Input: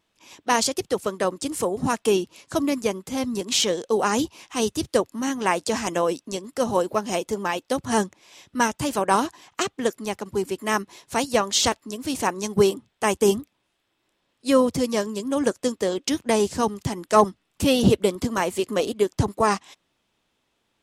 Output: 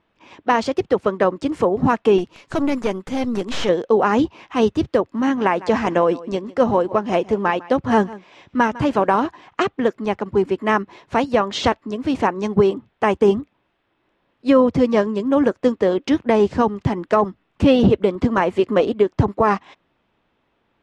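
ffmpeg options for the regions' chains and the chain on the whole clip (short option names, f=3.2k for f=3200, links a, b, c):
-filter_complex "[0:a]asettb=1/sr,asplit=3[a][b][c];[a]atrim=end=2.184[d];[b]atrim=start=2.18:end=3.69,asetpts=PTS-STARTPTS,afade=t=in:d=0.004:c=qsin,afade=t=out:st=1.506:d=0.004:c=qsin,aemphasis=mode=production:type=75kf,aeval=exprs='(tanh(11.2*val(0)+0.55)-tanh(0.55))/11.2':c=same[e];[c]atrim=start=3.686[f];[d][e]acrossfade=d=0.004:c1=hsin:c2=qsin[g];[g][f]acrossfade=d=0.004:c1=qsin:c2=hsin,asettb=1/sr,asplit=3[h][i][j];[h]atrim=end=5.104[k];[i]atrim=start=5.1:end=9.26,asetpts=PTS-STARTPTS,afade=t=in:d=0.004:c=qsin,afade=t=out:st=4.156:d=0.004:c=qsin,acrusher=bits=7:mode=log:mix=0:aa=0.000001,aecho=1:1:152:0.0944,atrim=end_sample=183456[l];[j]atrim=start=9.256[m];[k][l]acrossfade=d=0.004:c1=hsin:c2=qsin[n];[n][m]acrossfade=d=0.004:c1=qsin:c2=hsin,lowpass=2.1k,alimiter=limit=-13dB:level=0:latency=1:release=187,volume=7.5dB"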